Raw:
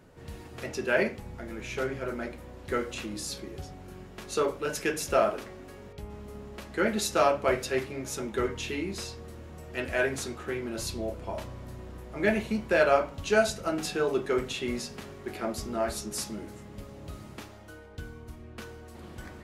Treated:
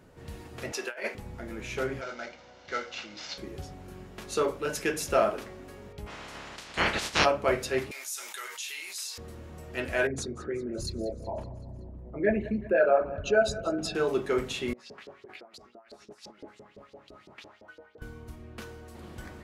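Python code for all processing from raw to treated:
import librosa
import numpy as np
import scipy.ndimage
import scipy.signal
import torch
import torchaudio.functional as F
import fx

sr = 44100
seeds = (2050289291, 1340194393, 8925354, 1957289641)

y = fx.chain(x, sr, fx.highpass(hz=620.0, slope=12),
    fx.over_compress(threshold_db=-33.0, ratio=-0.5), at=(0.72, 1.15))
y = fx.chain(y, sr, fx.cvsd(bps=32000),
    fx.highpass(hz=750.0, slope=6),
    fx.comb(ms=1.4, depth=0.39), at=(2.01, 3.38))
y = fx.spec_clip(y, sr, under_db=30, at=(6.06, 7.24), fade=0.02)
y = fx.lowpass(y, sr, hz=5900.0, slope=12, at=(6.06, 7.24), fade=0.02)
y = fx.chain(y, sr, fx.highpass(hz=720.0, slope=12),
    fx.differentiator(),
    fx.env_flatten(amount_pct=70), at=(7.91, 9.18))
y = fx.chain(y, sr, fx.envelope_sharpen(power=2.0),
    fx.echo_feedback(ms=188, feedback_pct=58, wet_db=-17.0), at=(10.07, 13.95))
y = fx.chain(y, sr, fx.over_compress(threshold_db=-40.0, ratio=-1.0),
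    fx.low_shelf(hz=320.0, db=6.5),
    fx.filter_lfo_bandpass(shape='saw_up', hz=5.9, low_hz=410.0, high_hz=4900.0, q=2.6), at=(14.73, 18.02))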